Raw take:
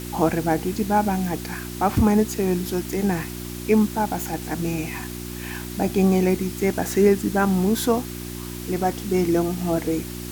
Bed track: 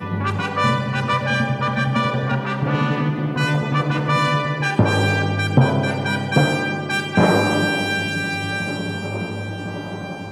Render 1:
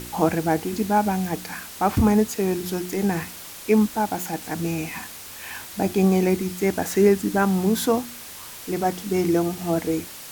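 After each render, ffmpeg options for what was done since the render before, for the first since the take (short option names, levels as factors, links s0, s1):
-af "bandreject=f=60:t=h:w=4,bandreject=f=120:t=h:w=4,bandreject=f=180:t=h:w=4,bandreject=f=240:t=h:w=4,bandreject=f=300:t=h:w=4,bandreject=f=360:t=h:w=4"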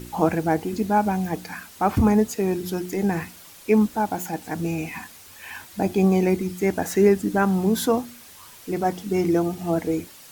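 -af "afftdn=nr=8:nf=-39"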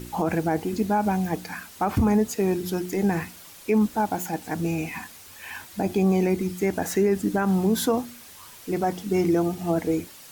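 -af "alimiter=limit=0.224:level=0:latency=1:release=54"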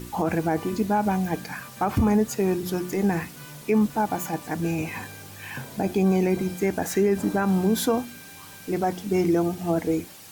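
-filter_complex "[1:a]volume=0.0596[s0];[0:a][s0]amix=inputs=2:normalize=0"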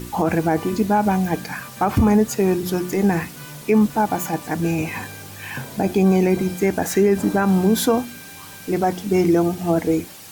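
-af "volume=1.78"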